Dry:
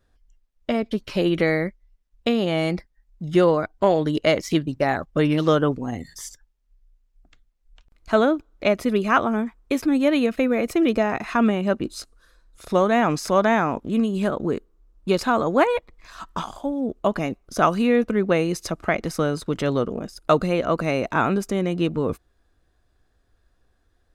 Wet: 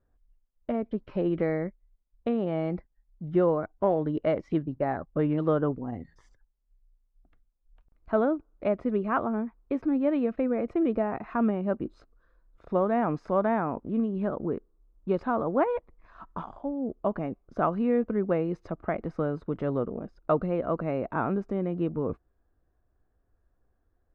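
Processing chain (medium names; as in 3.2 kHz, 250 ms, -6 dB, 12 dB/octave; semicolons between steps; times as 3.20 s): low-pass 1.2 kHz 12 dB/octave; trim -6 dB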